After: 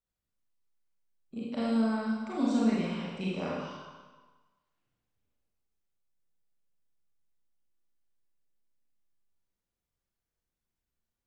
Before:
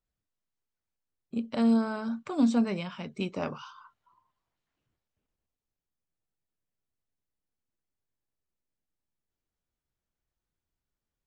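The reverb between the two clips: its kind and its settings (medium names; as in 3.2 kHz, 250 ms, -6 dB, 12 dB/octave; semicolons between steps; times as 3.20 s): Schroeder reverb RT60 1.2 s, combs from 32 ms, DRR -6 dB; trim -7.5 dB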